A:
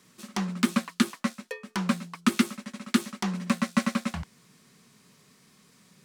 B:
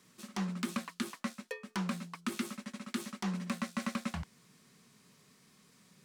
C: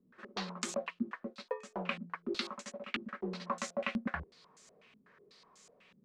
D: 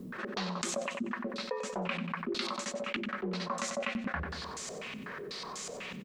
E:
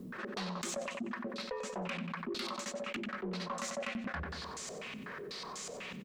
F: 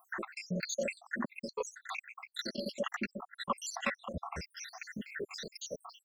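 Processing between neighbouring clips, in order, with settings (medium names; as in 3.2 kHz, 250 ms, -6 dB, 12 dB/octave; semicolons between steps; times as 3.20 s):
peak limiter -19.5 dBFS, peak gain reduction 10.5 dB; trim -4.5 dB
ten-band graphic EQ 125 Hz -11 dB, 250 Hz -8 dB, 500 Hz +6 dB; step-sequenced low-pass 8.1 Hz 240–7000 Hz
feedback delay 93 ms, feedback 41%, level -15 dB; level flattener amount 70%; trim -1.5 dB
saturation -28.5 dBFS, distortion -16 dB; trim -2 dB
random holes in the spectrogram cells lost 83%; trim +8 dB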